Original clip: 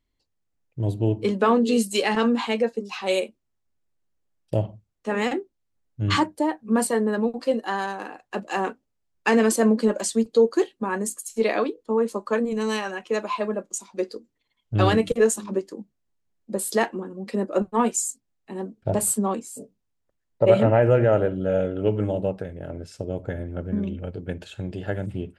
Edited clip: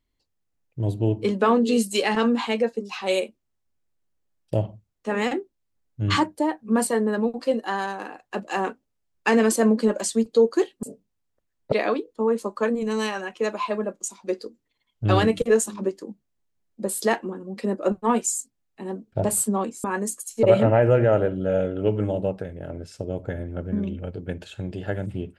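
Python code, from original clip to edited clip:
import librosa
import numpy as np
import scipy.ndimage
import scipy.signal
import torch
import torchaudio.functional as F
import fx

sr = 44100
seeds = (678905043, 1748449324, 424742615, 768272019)

y = fx.edit(x, sr, fx.swap(start_s=10.83, length_s=0.59, other_s=19.54, other_length_s=0.89), tone=tone)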